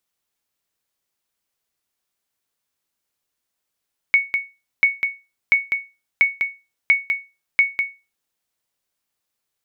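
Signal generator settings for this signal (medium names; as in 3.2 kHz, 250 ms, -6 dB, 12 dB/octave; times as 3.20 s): sonar ping 2.22 kHz, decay 0.27 s, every 0.69 s, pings 6, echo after 0.20 s, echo -6.5 dB -6.5 dBFS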